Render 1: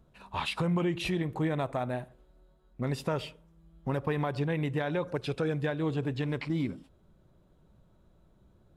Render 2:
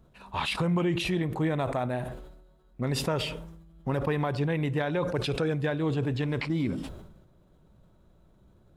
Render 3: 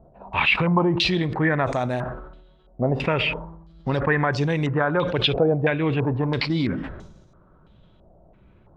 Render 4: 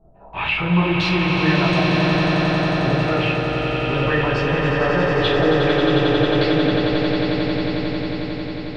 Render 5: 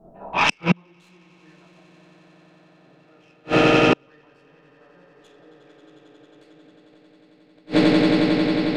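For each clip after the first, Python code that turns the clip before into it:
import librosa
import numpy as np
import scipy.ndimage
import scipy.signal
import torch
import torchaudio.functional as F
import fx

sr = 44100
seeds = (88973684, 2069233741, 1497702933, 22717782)

y1 = fx.sustainer(x, sr, db_per_s=52.0)
y1 = y1 * librosa.db_to_amplitude(2.0)
y2 = fx.filter_held_lowpass(y1, sr, hz=3.0, low_hz=700.0, high_hz=6100.0)
y2 = y2 * librosa.db_to_amplitude(5.0)
y3 = fx.echo_swell(y2, sr, ms=90, loudest=8, wet_db=-6.5)
y3 = fx.room_shoebox(y3, sr, seeds[0], volume_m3=53.0, walls='mixed', distance_m=1.2)
y3 = y3 * librosa.db_to_amplitude(-8.0)
y4 = fx.tracing_dist(y3, sr, depth_ms=0.087)
y4 = fx.gate_flip(y4, sr, shuts_db=-11.0, range_db=-41)
y4 = fx.low_shelf_res(y4, sr, hz=140.0, db=-11.5, q=1.5)
y4 = y4 * librosa.db_to_amplitude(6.5)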